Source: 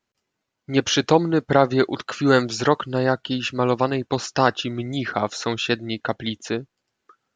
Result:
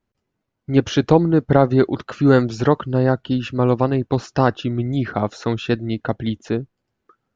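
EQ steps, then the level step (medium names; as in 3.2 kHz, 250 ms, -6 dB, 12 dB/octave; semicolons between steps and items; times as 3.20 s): tilt EQ -3 dB/octave; -1.0 dB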